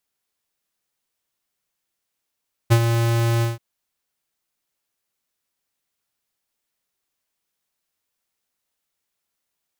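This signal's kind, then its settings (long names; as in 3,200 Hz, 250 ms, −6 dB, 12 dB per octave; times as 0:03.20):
note with an ADSR envelope square 116 Hz, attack 21 ms, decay 66 ms, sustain −7.5 dB, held 0.72 s, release 162 ms −11.5 dBFS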